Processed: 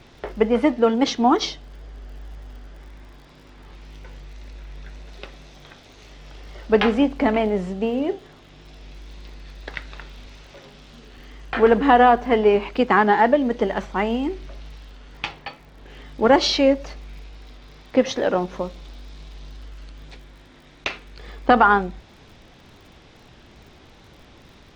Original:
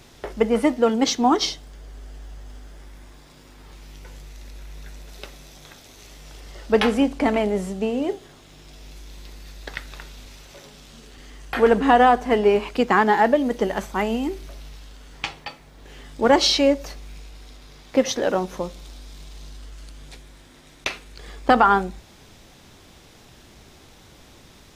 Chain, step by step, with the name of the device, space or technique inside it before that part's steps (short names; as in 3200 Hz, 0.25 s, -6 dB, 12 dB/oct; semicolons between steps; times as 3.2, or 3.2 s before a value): lo-fi chain (LPF 4000 Hz 12 dB/oct; wow and flutter; crackle 51/s -44 dBFS); gain +1 dB